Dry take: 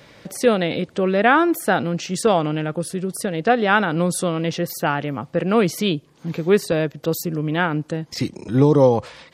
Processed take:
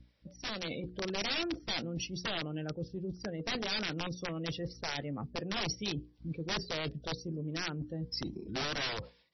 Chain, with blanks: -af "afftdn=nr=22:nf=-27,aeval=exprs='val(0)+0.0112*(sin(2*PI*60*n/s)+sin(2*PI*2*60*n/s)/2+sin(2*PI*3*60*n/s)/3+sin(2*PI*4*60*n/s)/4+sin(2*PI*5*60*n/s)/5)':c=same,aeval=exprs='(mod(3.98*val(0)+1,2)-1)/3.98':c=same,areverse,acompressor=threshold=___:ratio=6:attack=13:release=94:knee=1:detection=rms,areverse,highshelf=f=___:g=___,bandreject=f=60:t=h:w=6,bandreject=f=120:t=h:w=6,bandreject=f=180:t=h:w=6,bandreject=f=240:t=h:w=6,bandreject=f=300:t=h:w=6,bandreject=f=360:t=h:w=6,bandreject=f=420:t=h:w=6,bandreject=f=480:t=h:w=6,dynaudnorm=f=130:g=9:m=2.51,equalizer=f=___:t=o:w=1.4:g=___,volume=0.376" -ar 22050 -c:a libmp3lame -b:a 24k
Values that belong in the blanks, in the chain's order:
0.02, 3.6k, 10.5, 1.1k, -4